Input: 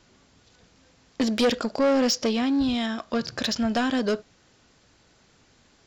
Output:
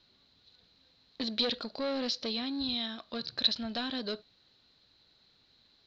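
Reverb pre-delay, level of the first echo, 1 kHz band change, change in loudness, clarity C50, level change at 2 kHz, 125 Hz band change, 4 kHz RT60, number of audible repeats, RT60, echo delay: none, none, -12.5 dB, -8.0 dB, none, -11.0 dB, -13.0 dB, none, none, none, none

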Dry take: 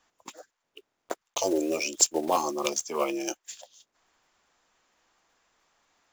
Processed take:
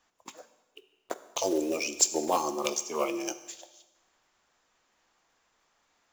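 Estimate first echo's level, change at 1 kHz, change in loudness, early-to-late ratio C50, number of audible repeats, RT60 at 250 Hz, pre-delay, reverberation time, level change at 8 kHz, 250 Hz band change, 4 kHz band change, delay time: none, -1.5 dB, -1.5 dB, 13.5 dB, none, 1.1 s, 13 ms, 1.1 s, -1.5 dB, -2.0 dB, -1.5 dB, none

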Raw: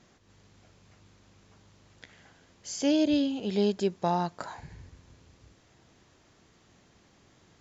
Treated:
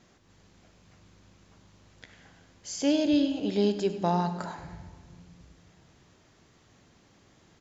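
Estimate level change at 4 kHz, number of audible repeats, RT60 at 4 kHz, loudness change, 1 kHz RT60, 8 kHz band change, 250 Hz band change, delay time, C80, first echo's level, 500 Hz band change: +0.5 dB, 1, 1.1 s, +1.0 dB, 1.5 s, n/a, +1.0 dB, 98 ms, 10.5 dB, -15.0 dB, +0.5 dB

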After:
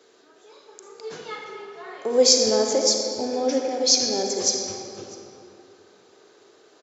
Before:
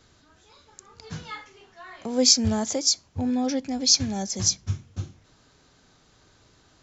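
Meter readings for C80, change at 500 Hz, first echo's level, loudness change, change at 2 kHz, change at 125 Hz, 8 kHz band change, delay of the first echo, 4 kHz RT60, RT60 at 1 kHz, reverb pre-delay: 3.0 dB, +10.5 dB, -22.0 dB, +2.0 dB, +2.5 dB, under -15 dB, n/a, 0.649 s, 1.8 s, 2.8 s, 35 ms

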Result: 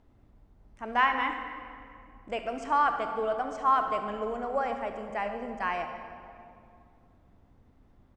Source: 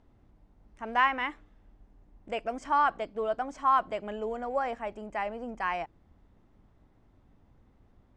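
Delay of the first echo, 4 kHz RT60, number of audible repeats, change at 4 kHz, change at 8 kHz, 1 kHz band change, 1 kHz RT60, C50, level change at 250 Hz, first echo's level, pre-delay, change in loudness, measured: 68 ms, 1.6 s, 1, +1.0 dB, n/a, +1.0 dB, 2.3 s, 6.5 dB, +1.5 dB, -16.0 dB, 30 ms, +0.5 dB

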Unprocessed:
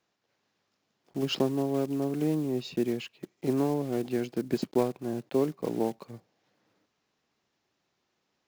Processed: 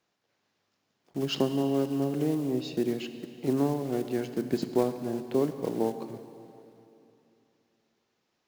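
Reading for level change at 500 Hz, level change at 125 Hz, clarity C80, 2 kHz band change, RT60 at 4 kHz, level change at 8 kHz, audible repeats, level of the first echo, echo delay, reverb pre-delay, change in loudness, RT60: +0.5 dB, +0.5 dB, 10.5 dB, -0.5 dB, 2.7 s, +0.5 dB, none, none, none, 5 ms, +0.5 dB, 2.8 s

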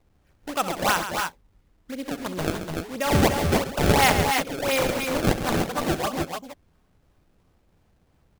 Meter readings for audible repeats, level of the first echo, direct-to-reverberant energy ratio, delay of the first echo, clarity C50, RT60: 3, -13.0 dB, none, 66 ms, none, none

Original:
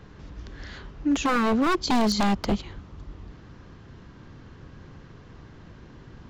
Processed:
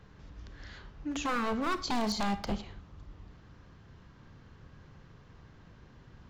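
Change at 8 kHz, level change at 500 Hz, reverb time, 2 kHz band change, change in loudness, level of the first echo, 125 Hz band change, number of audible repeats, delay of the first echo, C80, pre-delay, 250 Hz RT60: -7.5 dB, -9.0 dB, 0.55 s, -7.5 dB, -9.0 dB, none, -8.5 dB, none, none, 18.0 dB, 29 ms, 0.50 s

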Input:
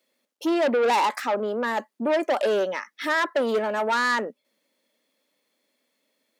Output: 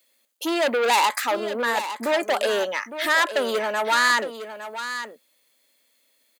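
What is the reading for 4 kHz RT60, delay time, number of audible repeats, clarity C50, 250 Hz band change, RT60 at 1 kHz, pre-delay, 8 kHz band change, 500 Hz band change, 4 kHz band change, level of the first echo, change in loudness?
none, 0.859 s, 1, none, -3.0 dB, none, none, +10.0 dB, -0.5 dB, +7.5 dB, -11.0 dB, +1.5 dB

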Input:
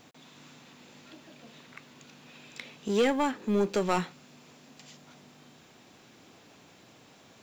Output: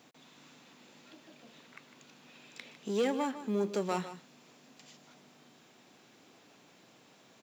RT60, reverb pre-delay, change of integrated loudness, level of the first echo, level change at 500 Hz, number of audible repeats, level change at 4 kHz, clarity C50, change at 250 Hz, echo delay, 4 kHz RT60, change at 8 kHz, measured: none, none, -6.0 dB, -12.5 dB, -5.0 dB, 1, -6.0 dB, none, -5.0 dB, 0.153 s, none, -4.5 dB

